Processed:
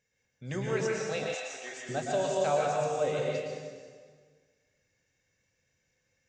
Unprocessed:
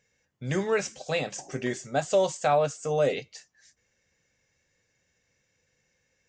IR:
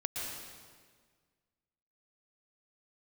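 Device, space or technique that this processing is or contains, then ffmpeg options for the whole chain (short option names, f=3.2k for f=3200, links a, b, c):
stairwell: -filter_complex "[1:a]atrim=start_sample=2205[a];[0:a][a]afir=irnorm=-1:irlink=0,asettb=1/sr,asplit=3[b][c][d];[b]atrim=end=1.344[e];[c]atrim=start=1.34:end=1.89,asetpts=PTS-STARTPTS,afade=t=in:d=0.004:c=qsin,afade=t=out:st=0.546:d=0.004:c=qsin,highpass=730[f];[d]atrim=start=1.886[g];[e][f]acrossfade=d=0.004:c1=hsin:c2=qsin[h];[h][g]acrossfade=d=0.004:c1=qsin:c2=hsin,volume=-6.5dB"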